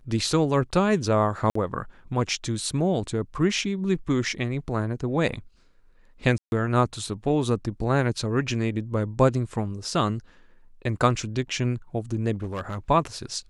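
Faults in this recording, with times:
1.50–1.55 s: dropout 54 ms
6.38–6.52 s: dropout 141 ms
12.34–12.78 s: clipped -25.5 dBFS

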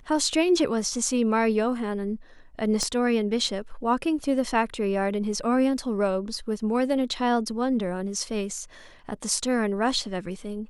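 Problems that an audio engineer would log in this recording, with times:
2.83 s: pop -15 dBFS

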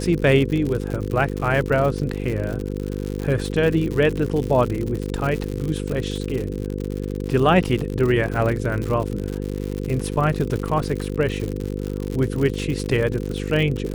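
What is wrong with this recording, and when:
buzz 50 Hz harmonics 10 -27 dBFS
crackle 100 per s -25 dBFS

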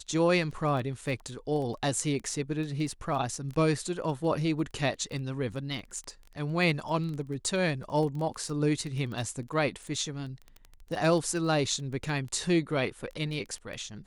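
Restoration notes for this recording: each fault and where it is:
crackle 11 per s -34 dBFS

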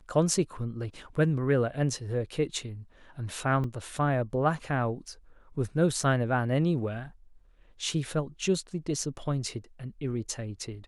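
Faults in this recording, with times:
3.64 s: dropout 2.1 ms

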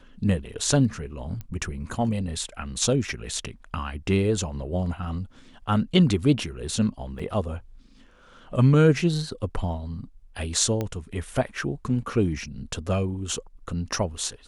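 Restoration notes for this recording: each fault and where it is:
1.41 s: pop -23 dBFS
7.19–7.20 s: dropout 5.4 ms
10.81 s: pop -15 dBFS

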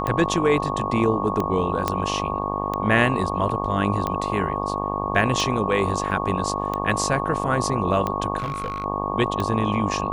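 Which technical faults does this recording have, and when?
buzz 50 Hz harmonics 24 -28 dBFS
tick 45 rpm -12 dBFS
whine 1.1 kHz -29 dBFS
1.88 s: pop -7 dBFS
6.11 s: dropout 3.3 ms
8.38–8.84 s: clipped -22.5 dBFS

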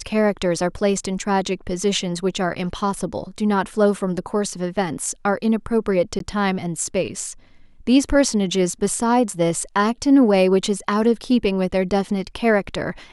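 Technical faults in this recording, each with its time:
6.19–6.20 s: dropout 13 ms

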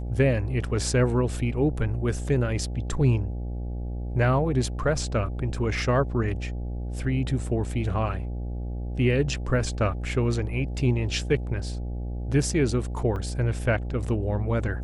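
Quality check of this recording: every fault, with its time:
buzz 60 Hz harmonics 14 -31 dBFS
13.16 s: dropout 2.3 ms

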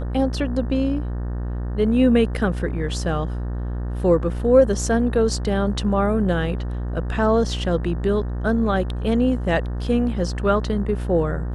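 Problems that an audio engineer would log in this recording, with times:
buzz 60 Hz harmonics 31 -26 dBFS

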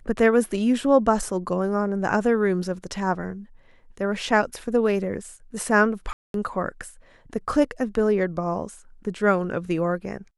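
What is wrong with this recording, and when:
6.13–6.34 s: dropout 212 ms

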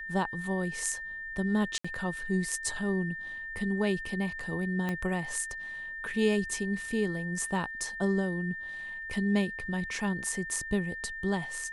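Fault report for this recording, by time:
whine 1.8 kHz -37 dBFS
1.78–1.84 s: dropout 65 ms
4.89 s: pop -19 dBFS

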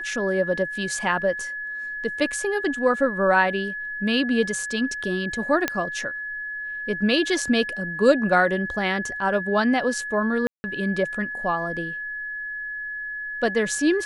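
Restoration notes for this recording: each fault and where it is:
whine 1.7 kHz -29 dBFS
5.68 s: pop -7 dBFS
10.47–10.64 s: dropout 170 ms

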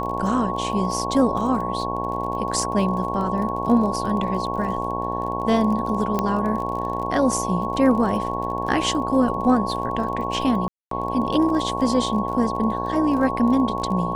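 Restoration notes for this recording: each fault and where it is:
buzz 60 Hz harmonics 18 -28 dBFS
crackle 27 per s -30 dBFS
whine 1.1 kHz -27 dBFS
6.19 s: pop -9 dBFS
10.68–10.91 s: dropout 233 ms

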